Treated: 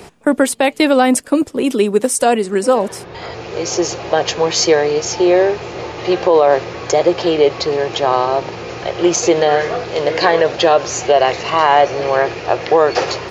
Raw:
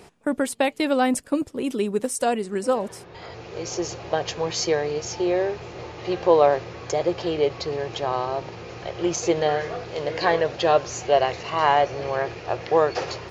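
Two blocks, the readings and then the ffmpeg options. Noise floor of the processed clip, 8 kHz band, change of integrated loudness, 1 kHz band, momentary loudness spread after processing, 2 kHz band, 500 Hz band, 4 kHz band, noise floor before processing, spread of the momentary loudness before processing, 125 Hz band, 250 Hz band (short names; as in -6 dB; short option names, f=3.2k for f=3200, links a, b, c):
-35 dBFS, +11.0 dB, +9.0 dB, +8.5 dB, 8 LU, +9.5 dB, +9.0 dB, +10.5 dB, -45 dBFS, 11 LU, +5.5 dB, +9.5 dB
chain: -filter_complex "[0:a]acrossover=split=190|3000[a][b][c];[a]acompressor=threshold=-47dB:ratio=6[d];[d][b][c]amix=inputs=3:normalize=0,alimiter=level_in=12dB:limit=-1dB:release=50:level=0:latency=1,volume=-1dB"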